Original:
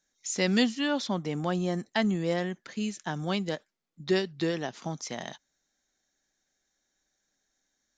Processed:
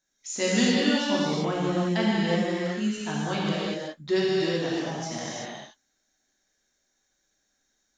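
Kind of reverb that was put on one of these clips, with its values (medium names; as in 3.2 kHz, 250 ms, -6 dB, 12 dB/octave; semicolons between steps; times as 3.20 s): gated-style reverb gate 400 ms flat, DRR -7 dB; trim -3.5 dB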